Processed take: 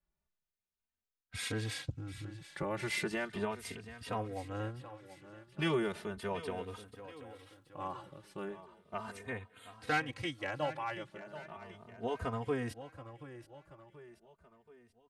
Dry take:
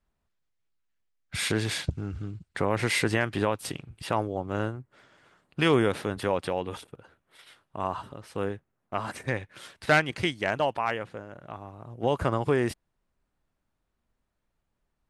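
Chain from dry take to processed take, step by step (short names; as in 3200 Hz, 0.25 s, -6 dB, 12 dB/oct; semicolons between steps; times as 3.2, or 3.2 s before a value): 6.51–8.06 crackle 240/s -57 dBFS; 9.27–9.73 Butterworth band-stop 5400 Hz, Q 1.6; feedback echo 0.73 s, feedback 49%, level -14 dB; endless flanger 3 ms +0.36 Hz; gain -7 dB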